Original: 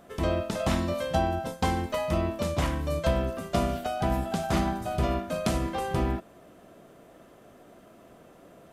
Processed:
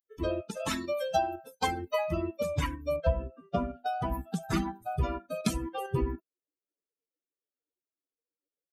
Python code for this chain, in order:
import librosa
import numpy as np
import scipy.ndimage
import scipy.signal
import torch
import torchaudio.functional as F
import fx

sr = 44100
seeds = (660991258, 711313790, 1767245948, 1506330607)

p1 = fx.bin_expand(x, sr, power=3.0)
p2 = fx.bass_treble(p1, sr, bass_db=-10, treble_db=4, at=(0.57, 1.67))
p3 = fx.level_steps(p2, sr, step_db=23)
p4 = p2 + (p3 * 10.0 ** (-1.0 / 20.0))
p5 = fx.spacing_loss(p4, sr, db_at_10k=29, at=(2.96, 3.86))
y = p5 * 10.0 ** (3.0 / 20.0)